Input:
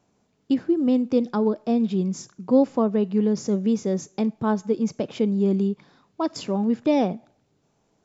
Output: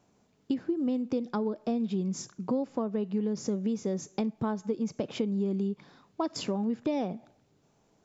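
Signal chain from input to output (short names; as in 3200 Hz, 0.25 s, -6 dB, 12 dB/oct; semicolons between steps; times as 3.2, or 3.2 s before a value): compressor 6:1, threshold -27 dBFS, peak gain reduction 14 dB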